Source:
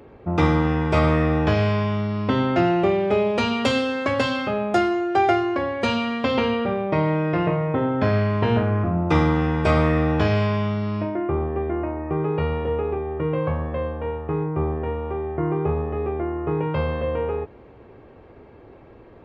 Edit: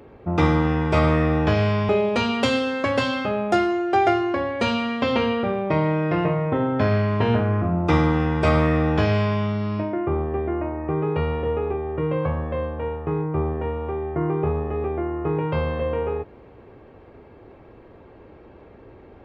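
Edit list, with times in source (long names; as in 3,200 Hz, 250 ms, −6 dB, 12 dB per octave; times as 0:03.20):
0:01.89–0:03.11: remove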